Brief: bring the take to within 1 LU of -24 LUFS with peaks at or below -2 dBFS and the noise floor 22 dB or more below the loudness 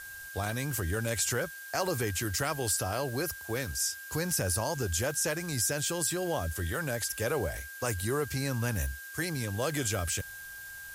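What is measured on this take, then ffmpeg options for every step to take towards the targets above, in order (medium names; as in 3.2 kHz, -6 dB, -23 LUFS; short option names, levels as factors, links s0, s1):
steady tone 1.6 kHz; tone level -43 dBFS; noise floor -45 dBFS; noise floor target -54 dBFS; loudness -31.5 LUFS; peak level -16.5 dBFS; loudness target -24.0 LUFS
-> -af "bandreject=f=1600:w=30"
-af "afftdn=nr=9:nf=-45"
-af "volume=2.37"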